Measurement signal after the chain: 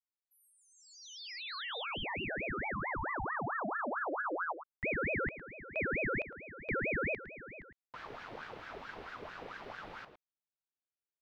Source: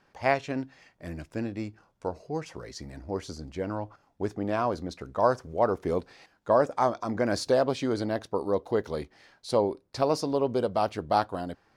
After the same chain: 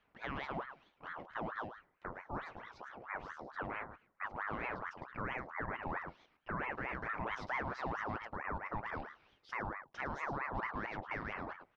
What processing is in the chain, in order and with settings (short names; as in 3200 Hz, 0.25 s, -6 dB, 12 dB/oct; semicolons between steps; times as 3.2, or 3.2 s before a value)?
air absorption 340 m; on a send: echo 0.108 s -10 dB; on the sum: limiter -22 dBFS; high shelf 8100 Hz -4.5 dB; ring modulator with a swept carrier 1000 Hz, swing 60%, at 4.5 Hz; gain -5.5 dB